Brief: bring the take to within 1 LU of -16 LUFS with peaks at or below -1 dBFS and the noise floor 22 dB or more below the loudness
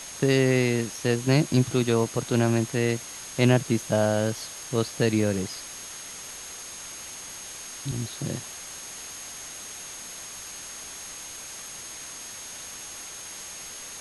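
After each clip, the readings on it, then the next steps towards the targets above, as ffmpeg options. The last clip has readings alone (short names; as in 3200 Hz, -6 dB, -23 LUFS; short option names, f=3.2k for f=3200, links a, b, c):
steady tone 6500 Hz; tone level -41 dBFS; noise floor -40 dBFS; noise floor target -50 dBFS; loudness -28.0 LUFS; peak -7.5 dBFS; loudness target -16.0 LUFS
-> -af "bandreject=f=6.5k:w=30"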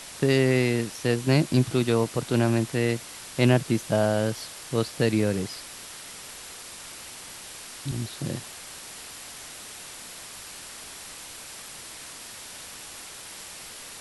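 steady tone none; noise floor -42 dBFS; noise floor target -47 dBFS
-> -af "afftdn=nr=6:nf=-42"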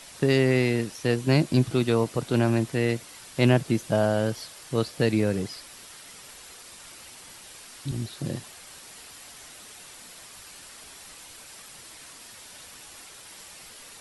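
noise floor -47 dBFS; noise floor target -48 dBFS
-> -af "afftdn=nr=6:nf=-47"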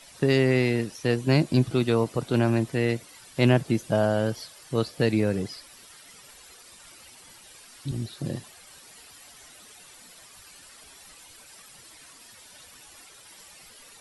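noise floor -51 dBFS; loudness -25.5 LUFS; peak -7.5 dBFS; loudness target -16.0 LUFS
-> -af "volume=9.5dB,alimiter=limit=-1dB:level=0:latency=1"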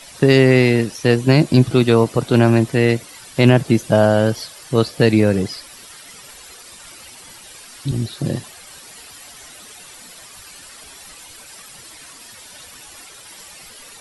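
loudness -16.0 LUFS; peak -1.0 dBFS; noise floor -41 dBFS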